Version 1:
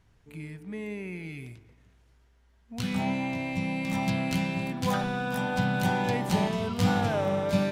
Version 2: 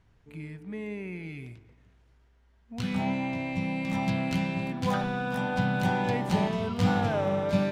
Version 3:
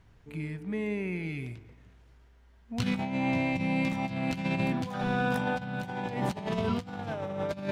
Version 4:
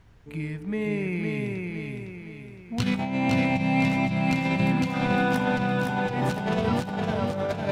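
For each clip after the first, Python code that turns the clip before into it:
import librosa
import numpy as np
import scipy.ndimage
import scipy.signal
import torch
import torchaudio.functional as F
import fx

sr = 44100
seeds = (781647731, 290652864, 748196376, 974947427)

y1 = fx.lowpass(x, sr, hz=3900.0, slope=6)
y2 = fx.over_compress(y1, sr, threshold_db=-31.0, ratio=-0.5)
y2 = y2 * librosa.db_to_amplitude(1.0)
y3 = fx.echo_feedback(y2, sr, ms=510, feedback_pct=43, wet_db=-3.5)
y3 = y3 * librosa.db_to_amplitude(4.0)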